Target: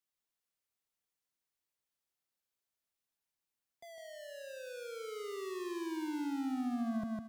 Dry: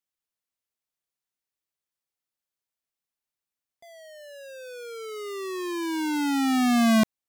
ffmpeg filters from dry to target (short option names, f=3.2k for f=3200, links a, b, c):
-filter_complex "[0:a]acrossover=split=180[a][b];[b]acompressor=threshold=-48dB:ratio=1.5[c];[a][c]amix=inputs=2:normalize=0,asoftclip=type=tanh:threshold=-28.5dB,aecho=1:1:154|308|462|616:0.531|0.181|0.0614|0.0209,acompressor=threshold=-31dB:ratio=6,volume=-2dB"